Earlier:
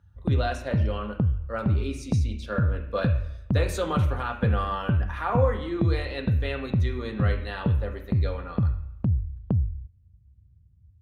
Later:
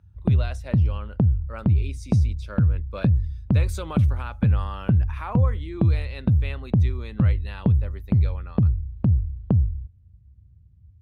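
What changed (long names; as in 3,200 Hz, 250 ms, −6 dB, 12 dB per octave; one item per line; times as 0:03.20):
background +4.5 dB
reverb: off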